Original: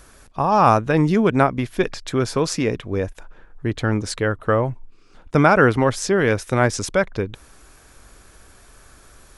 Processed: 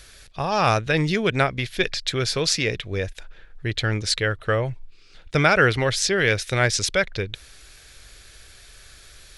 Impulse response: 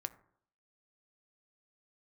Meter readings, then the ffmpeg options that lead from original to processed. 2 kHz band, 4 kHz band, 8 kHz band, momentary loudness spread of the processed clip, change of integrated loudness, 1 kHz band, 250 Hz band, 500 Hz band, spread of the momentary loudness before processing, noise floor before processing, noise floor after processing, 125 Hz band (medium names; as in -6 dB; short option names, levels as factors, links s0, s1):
+2.0 dB, +8.0 dB, +3.0 dB, 12 LU, -2.5 dB, -6.0 dB, -7.5 dB, -4.5 dB, 11 LU, -50 dBFS, -49 dBFS, -2.5 dB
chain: -af "equalizer=f=250:t=o:w=1:g=-10,equalizer=f=1000:t=o:w=1:g=-10,equalizer=f=2000:t=o:w=1:g=5,equalizer=f=4000:t=o:w=1:g=10"